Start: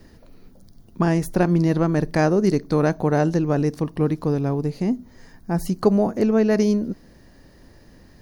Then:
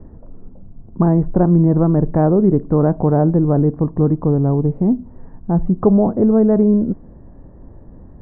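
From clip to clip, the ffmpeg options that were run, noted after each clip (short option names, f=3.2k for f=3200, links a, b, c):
-filter_complex "[0:a]lowpass=f=1.1k:w=0.5412,lowpass=f=1.1k:w=1.3066,lowshelf=f=180:g=7,asplit=2[a][b];[b]alimiter=limit=-14.5dB:level=0:latency=1:release=11,volume=-2dB[c];[a][c]amix=inputs=2:normalize=0"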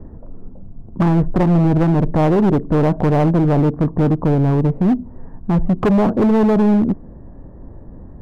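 -af "volume=14dB,asoftclip=hard,volume=-14dB,volume=3dB"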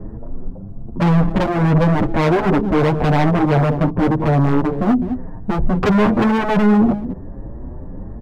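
-filter_complex "[0:a]asplit=2[a][b];[b]adelay=204.1,volume=-14dB,highshelf=f=4k:g=-4.59[c];[a][c]amix=inputs=2:normalize=0,aeval=exprs='0.355*sin(PI/2*1.78*val(0)/0.355)':c=same,asplit=2[d][e];[e]adelay=7.2,afreqshift=1.5[f];[d][f]amix=inputs=2:normalize=1"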